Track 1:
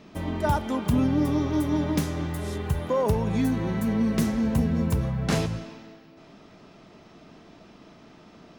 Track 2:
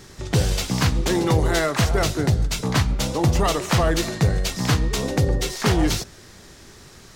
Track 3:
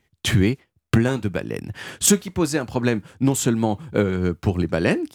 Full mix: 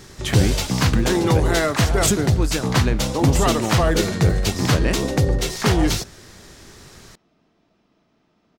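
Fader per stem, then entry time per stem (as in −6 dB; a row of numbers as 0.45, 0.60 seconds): −14.0, +1.5, −4.0 decibels; 0.10, 0.00, 0.00 seconds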